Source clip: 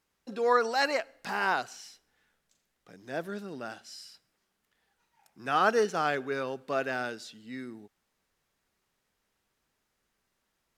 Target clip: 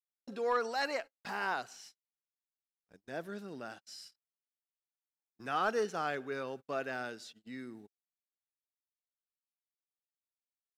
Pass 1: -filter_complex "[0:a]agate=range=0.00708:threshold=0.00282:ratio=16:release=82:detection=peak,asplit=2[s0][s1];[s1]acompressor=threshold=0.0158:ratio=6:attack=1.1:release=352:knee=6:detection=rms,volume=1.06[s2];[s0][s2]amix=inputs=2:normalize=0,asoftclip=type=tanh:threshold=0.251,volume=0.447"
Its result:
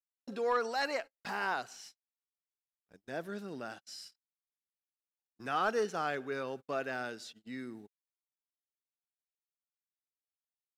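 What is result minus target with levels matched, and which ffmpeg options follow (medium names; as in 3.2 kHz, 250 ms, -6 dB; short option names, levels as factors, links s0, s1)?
compression: peak gain reduction -7.5 dB
-filter_complex "[0:a]agate=range=0.00708:threshold=0.00282:ratio=16:release=82:detection=peak,asplit=2[s0][s1];[s1]acompressor=threshold=0.00562:ratio=6:attack=1.1:release=352:knee=6:detection=rms,volume=1.06[s2];[s0][s2]amix=inputs=2:normalize=0,asoftclip=type=tanh:threshold=0.251,volume=0.447"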